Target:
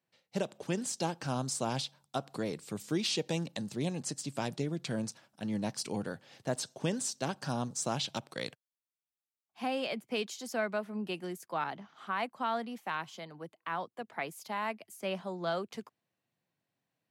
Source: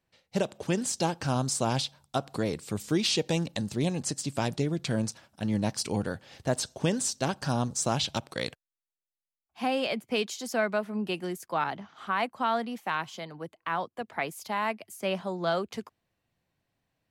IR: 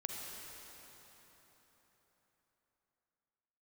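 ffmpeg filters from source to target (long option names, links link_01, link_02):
-af "highpass=frequency=120:width=0.5412,highpass=frequency=120:width=1.3066,volume=-5.5dB"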